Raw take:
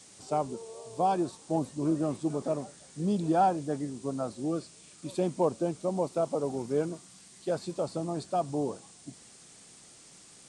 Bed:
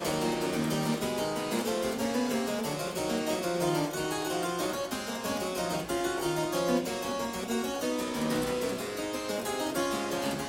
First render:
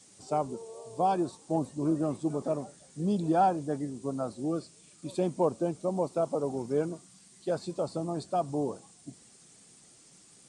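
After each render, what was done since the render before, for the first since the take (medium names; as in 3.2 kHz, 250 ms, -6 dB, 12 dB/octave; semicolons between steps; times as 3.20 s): noise reduction 6 dB, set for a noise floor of -54 dBFS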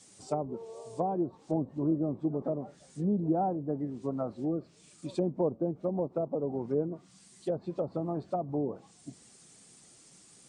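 low-pass that closes with the level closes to 540 Hz, closed at -26 dBFS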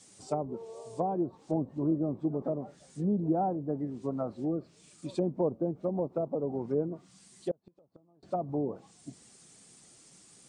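7.51–8.23 s: inverted gate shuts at -28 dBFS, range -32 dB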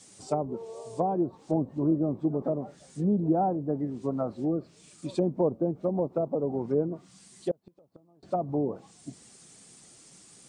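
trim +3.5 dB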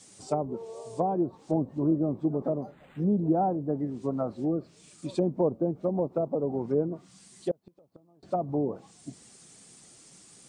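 2.62–3.03 s: decimation joined by straight lines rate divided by 8×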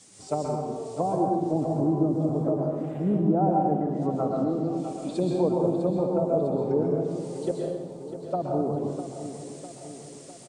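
feedback delay 652 ms, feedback 57%, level -11.5 dB; plate-style reverb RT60 1.1 s, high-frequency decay 0.95×, pre-delay 110 ms, DRR -1.5 dB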